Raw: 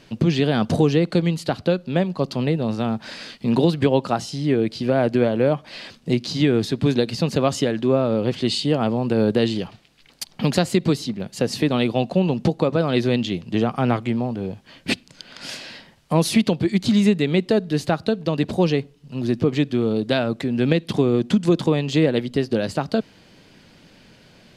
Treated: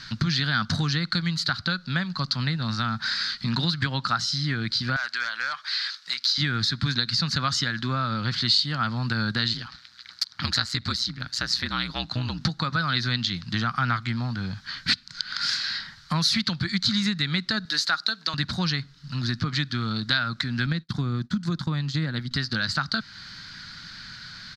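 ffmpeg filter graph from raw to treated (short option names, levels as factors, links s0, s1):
-filter_complex "[0:a]asettb=1/sr,asplit=3[s0][s1][s2];[s0]atrim=end=4.964[s3];[s1]atrim=start=4.96:end=6.38,asetpts=PTS-STARTPTS,afade=t=in:d=0.004:c=qsin,afade=t=out:st=1.416:d=0.004:c=qsin,highpass=1200,asoftclip=type=hard:threshold=0.0631[s4];[s2]atrim=start=6.376[s5];[s3][s4]acrossfade=d=0.004:c1=hsin:c2=qsin[s6];[s6][s5]acrossfade=d=0.004:c1=qsin:c2=hsin,asettb=1/sr,asplit=3[s7][s8][s9];[s7]atrim=end=9.534[s10];[s8]atrim=start=9.53:end=12.41,asetpts=PTS-STARTPTS,afade=t=in:d=0.004:c=qsin,afade=t=out:st=2.876:d=0.004:c=qsin,highpass=180,aeval=exprs='val(0)*sin(2*PI*61*n/s)':c=same[s11];[s9]atrim=start=12.406[s12];[s10][s11]acrossfade=d=0.004:c1=hsin:c2=qsin[s13];[s13][s12]acrossfade=d=0.004:c1=qsin:c2=hsin,asettb=1/sr,asplit=3[s14][s15][s16];[s14]atrim=end=17.654[s17];[s15]atrim=start=17.65:end=18.34,asetpts=PTS-STARTPTS,afade=t=in:d=0.004:c=qsin,afade=t=out:st=0.686:d=0.004:c=qsin,highpass=f=190:w=0.5412,highpass=f=190:w=1.3066,bass=f=250:g=-13,treble=f=4000:g=6[s18];[s16]atrim=start=18.336[s19];[s17][s18]acrossfade=d=0.004:c1=hsin:c2=qsin[s20];[s20][s19]acrossfade=d=0.004:c1=qsin:c2=hsin,asettb=1/sr,asplit=3[s21][s22][s23];[s21]atrim=end=20.664[s24];[s22]atrim=start=20.66:end=22.31,asetpts=PTS-STARTPTS,afade=t=in:d=0.004:c=qsin,afade=t=out:st=1.646:d=0.004:c=qsin,equalizer=f=3200:w=0.31:g=-10,agate=range=0.0224:threshold=0.0447:ratio=3:release=100:detection=peak[s25];[s23]atrim=start=22.306[s26];[s24][s25]acrossfade=d=0.004:c1=hsin:c2=qsin[s27];[s27][s26]acrossfade=d=0.004:c1=qsin:c2=hsin,firequalizer=gain_entry='entry(130,0);entry(430,-23);entry(1400,13);entry(2700,-4);entry(4100,14);entry(9100,-8)':delay=0.05:min_phase=1,acompressor=threshold=0.0224:ratio=2,volume=1.78"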